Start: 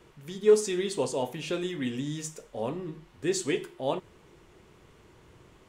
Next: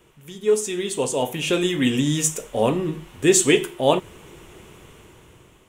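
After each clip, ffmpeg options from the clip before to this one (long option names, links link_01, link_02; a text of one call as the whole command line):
ffmpeg -i in.wav -af "dynaudnorm=framelen=330:gausssize=7:maxgain=14dB,aexciter=amount=1.5:drive=3.2:freq=2500" out.wav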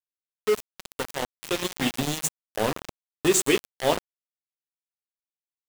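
ffmpeg -i in.wav -af "bandreject=frequency=60:width_type=h:width=6,bandreject=frequency=120:width_type=h:width=6,bandreject=frequency=180:width_type=h:width=6,aeval=exprs='val(0)*gte(abs(val(0)),0.133)':channel_layout=same,volume=-4.5dB" out.wav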